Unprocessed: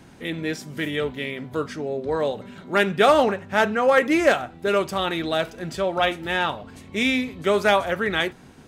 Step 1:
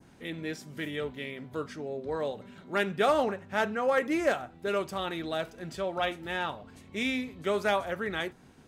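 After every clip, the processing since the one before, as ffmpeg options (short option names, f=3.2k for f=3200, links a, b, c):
-af "adynamicequalizer=threshold=0.0178:dfrequency=3000:dqfactor=0.9:tfrequency=3000:tqfactor=0.9:attack=5:release=100:ratio=0.375:range=2:mode=cutabove:tftype=bell,volume=-8.5dB"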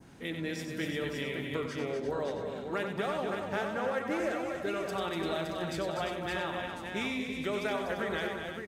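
-af "acompressor=threshold=-34dB:ratio=6,aecho=1:1:93|189|244|343|567|666:0.447|0.133|0.473|0.355|0.501|0.178,volume=2dB"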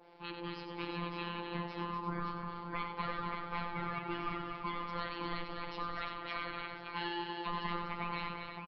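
-af "aeval=exprs='val(0)*sin(2*PI*630*n/s)':c=same,aresample=11025,aresample=44100,afftfilt=real='hypot(re,im)*cos(PI*b)':imag='0':win_size=1024:overlap=0.75,volume=1dB"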